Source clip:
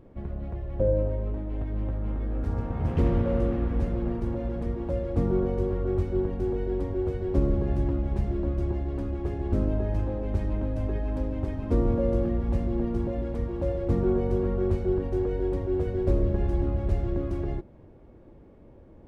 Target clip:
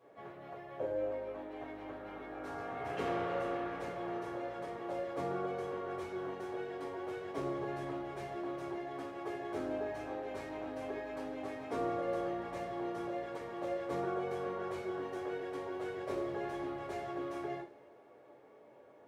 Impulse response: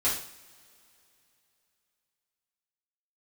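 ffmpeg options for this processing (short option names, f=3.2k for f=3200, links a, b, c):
-filter_complex "[0:a]highpass=570[a];[1:a]atrim=start_sample=2205,asetrate=70560,aresample=44100[b];[a][b]afir=irnorm=-1:irlink=0,volume=-3dB"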